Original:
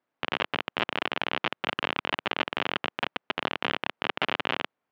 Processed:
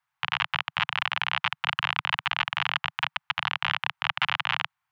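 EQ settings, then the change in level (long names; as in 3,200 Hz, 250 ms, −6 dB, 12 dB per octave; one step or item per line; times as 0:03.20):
inverse Chebyshev band-stop filter 220–560 Hz, stop band 40 dB
+3.5 dB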